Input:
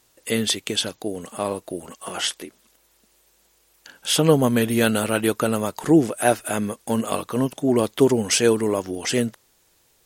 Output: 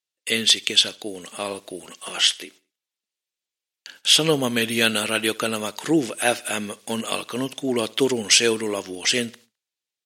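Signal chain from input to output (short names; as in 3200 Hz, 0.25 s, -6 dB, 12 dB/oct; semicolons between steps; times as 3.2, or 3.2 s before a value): weighting filter D; gate -44 dBFS, range -30 dB; on a send: feedback echo 70 ms, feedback 39%, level -23 dB; on the sum: gain -3.5 dB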